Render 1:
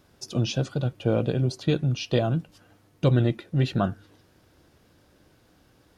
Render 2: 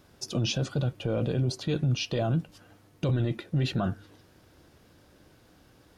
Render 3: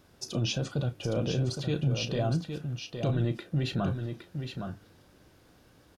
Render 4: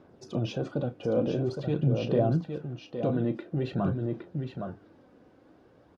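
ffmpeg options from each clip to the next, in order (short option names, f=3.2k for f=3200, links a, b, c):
-af "alimiter=limit=-20.5dB:level=0:latency=1:release=11,volume=1.5dB"
-filter_complex "[0:a]asplit=2[a][b];[b]adelay=34,volume=-13dB[c];[a][c]amix=inputs=2:normalize=0,aecho=1:1:814:0.447,volume=-2dB"
-af "bandpass=f=410:t=q:w=0.62:csg=0,aphaser=in_gain=1:out_gain=1:delay=4.1:decay=0.36:speed=0.48:type=sinusoidal,volume=4.5dB"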